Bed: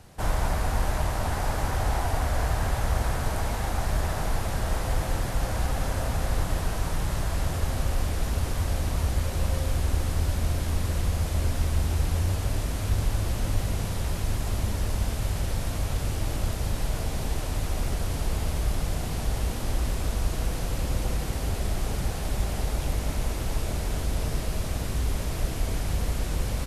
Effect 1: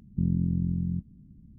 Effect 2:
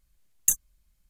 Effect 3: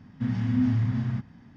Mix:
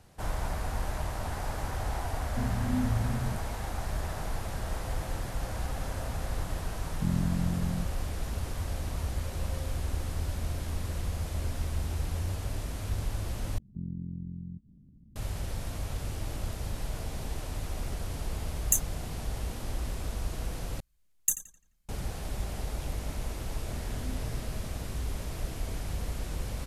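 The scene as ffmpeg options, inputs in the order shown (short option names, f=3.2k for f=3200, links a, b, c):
-filter_complex "[3:a]asplit=2[a][b];[1:a]asplit=2[c][d];[2:a]asplit=2[e][f];[0:a]volume=-7dB[g];[d]acompressor=mode=upward:threshold=-35dB:ratio=2.5:attack=3.2:release=140:knee=2.83:detection=peak[h];[e]asplit=2[i][j];[j]adelay=17,volume=-12dB[k];[i][k]amix=inputs=2:normalize=0[l];[f]asplit=2[m][n];[n]adelay=86,lowpass=f=4.2k:p=1,volume=-9dB,asplit=2[o][p];[p]adelay=86,lowpass=f=4.2k:p=1,volume=0.48,asplit=2[q][r];[r]adelay=86,lowpass=f=4.2k:p=1,volume=0.48,asplit=2[s][t];[t]adelay=86,lowpass=f=4.2k:p=1,volume=0.48,asplit=2[u][v];[v]adelay=86,lowpass=f=4.2k:p=1,volume=0.48[w];[m][o][q][s][u][w]amix=inputs=6:normalize=0[x];[b]tiltshelf=f=970:g=-7[y];[g]asplit=3[z][aa][ab];[z]atrim=end=13.584[ac];[h]atrim=end=1.58,asetpts=PTS-STARTPTS,volume=-11.5dB[ad];[aa]atrim=start=15.156:end=20.804[ae];[x]atrim=end=1.09,asetpts=PTS-STARTPTS,volume=-5dB[af];[ab]atrim=start=21.886[ag];[a]atrim=end=1.56,asetpts=PTS-STARTPTS,volume=-6.5dB,afade=t=in:d=0.004:c=hsin,afade=t=out:st=1.556:d=0.004:c=hsin,adelay=2160[ah];[c]atrim=end=1.58,asetpts=PTS-STARTPTS,volume=-3dB,afade=t=in:d=0.004:c=hsin,afade=t=out:st=1.576:d=0.004:c=hsin,adelay=6840[ai];[l]atrim=end=1.09,asetpts=PTS-STARTPTS,volume=-3.5dB,afade=t=in:d=0.004:c=hsin,afade=t=out:st=1.086:d=0.004:c=hsin,adelay=18240[aj];[y]atrim=end=1.56,asetpts=PTS-STARTPTS,volume=-13dB,afade=t=in:d=0.004:c=hsin,afade=t=out:st=1.556:d=0.004:c=hsin,adelay=23480[ak];[ac][ad]acrossfade=d=0.004:c1=hsin:c2=hsin[al];[al][ae]acrossfade=d=0.004:c1=hsin:c2=hsin[am];[am][af]acrossfade=d=0.004:c1=hsin:c2=hsin[an];[an][ag]acrossfade=d=0.004:c1=hsin:c2=hsin[ao];[ao][ah][ai][aj][ak]amix=inputs=5:normalize=0"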